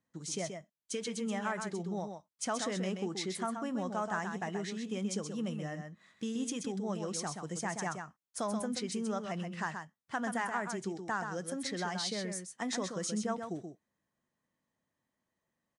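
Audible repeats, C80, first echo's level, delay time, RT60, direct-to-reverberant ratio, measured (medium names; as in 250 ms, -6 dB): 1, no reverb, -6.5 dB, 129 ms, no reverb, no reverb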